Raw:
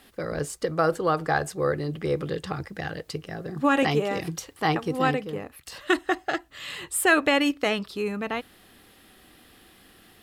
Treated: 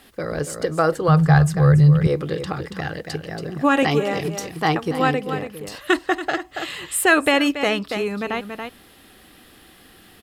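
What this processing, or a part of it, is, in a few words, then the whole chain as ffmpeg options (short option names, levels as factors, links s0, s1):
ducked delay: -filter_complex "[0:a]asplit=3[s0][s1][s2];[s1]adelay=281,volume=0.501[s3];[s2]apad=whole_len=463214[s4];[s3][s4]sidechaincompress=threshold=0.0282:ratio=8:attack=16:release=202[s5];[s0][s5]amix=inputs=2:normalize=0,asettb=1/sr,asplit=3[s6][s7][s8];[s6]atrim=end=1.084[s9];[s7]atrim=start=1.08:end=2.07,asetpts=PTS-STARTPTS,afade=t=in:d=0.004:c=qsin,afade=t=out:st=0.986:d=0.004:c=qsin,lowshelf=f=210:t=q:w=3:g=10.5[s10];[s8]atrim=start=2.066[s11];[s9][s10]acrossfade=d=0.004:c1=hsin:c2=qsin[s12];[s12][s11]acrossfade=d=0.004:c1=qsin:c2=hsin,volume=1.58"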